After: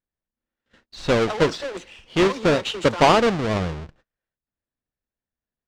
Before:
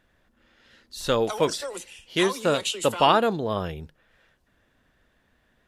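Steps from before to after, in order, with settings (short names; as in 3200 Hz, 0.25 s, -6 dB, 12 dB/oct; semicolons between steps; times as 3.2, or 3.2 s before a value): half-waves squared off; gate -51 dBFS, range -31 dB; air absorption 120 m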